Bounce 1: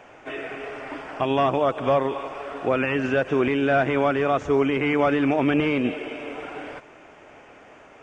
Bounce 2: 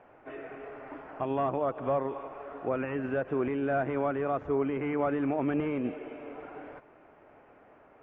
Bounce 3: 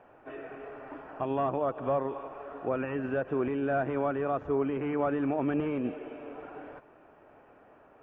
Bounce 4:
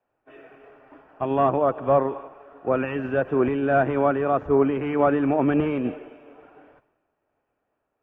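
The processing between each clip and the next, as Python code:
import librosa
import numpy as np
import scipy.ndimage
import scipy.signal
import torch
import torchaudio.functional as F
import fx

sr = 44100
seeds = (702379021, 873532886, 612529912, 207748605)

y1 = scipy.signal.sosfilt(scipy.signal.butter(2, 1500.0, 'lowpass', fs=sr, output='sos'), x)
y1 = y1 * librosa.db_to_amplitude(-8.0)
y2 = fx.notch(y1, sr, hz=2100.0, q=9.5)
y3 = fx.band_widen(y2, sr, depth_pct=100)
y3 = y3 * librosa.db_to_amplitude(8.0)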